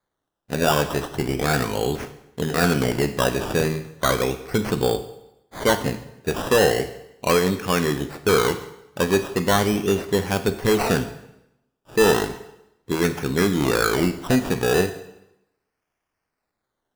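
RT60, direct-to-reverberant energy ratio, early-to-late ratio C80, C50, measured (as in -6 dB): 0.85 s, 9.0 dB, 14.5 dB, 12.0 dB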